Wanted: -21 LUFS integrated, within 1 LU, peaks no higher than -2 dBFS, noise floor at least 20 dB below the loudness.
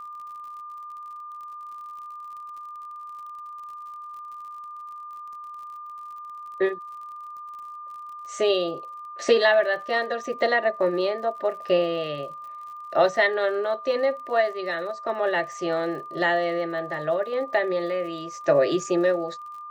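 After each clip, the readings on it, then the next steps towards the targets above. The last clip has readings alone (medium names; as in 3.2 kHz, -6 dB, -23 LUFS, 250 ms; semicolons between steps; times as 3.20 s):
tick rate 53 per s; steady tone 1.2 kHz; tone level -36 dBFS; loudness -24.5 LUFS; peak level -7.5 dBFS; loudness target -21.0 LUFS
-> de-click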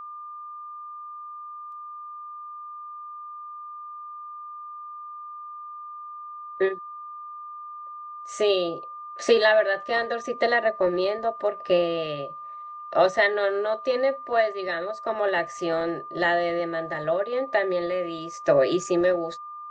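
tick rate 0.15 per s; steady tone 1.2 kHz; tone level -36 dBFS
-> band-stop 1.2 kHz, Q 30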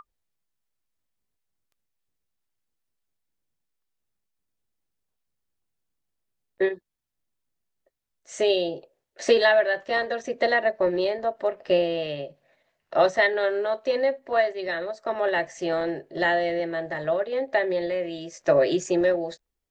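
steady tone not found; loudness -24.5 LUFS; peak level -8.0 dBFS; loudness target -21.0 LUFS
-> trim +3.5 dB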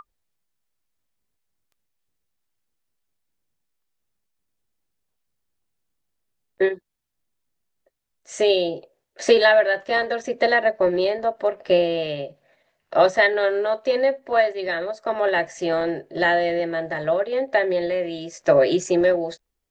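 loudness -21.0 LUFS; peak level -4.5 dBFS; noise floor -77 dBFS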